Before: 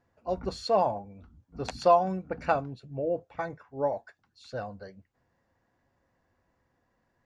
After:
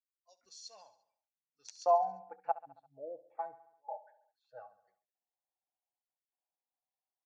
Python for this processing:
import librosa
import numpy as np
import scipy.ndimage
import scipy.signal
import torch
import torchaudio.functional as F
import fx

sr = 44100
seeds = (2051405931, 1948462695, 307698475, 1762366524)

y = fx.step_gate(x, sr, bpm=197, pattern='x..xxxxxxxxxxxx.', floor_db=-24.0, edge_ms=4.5)
y = fx.noise_reduce_blind(y, sr, reduce_db=18)
y = fx.bandpass_q(y, sr, hz=fx.steps((0.0, 6000.0), (1.86, 780.0)), q=5.7)
y = fx.echo_feedback(y, sr, ms=69, feedback_pct=58, wet_db=-17)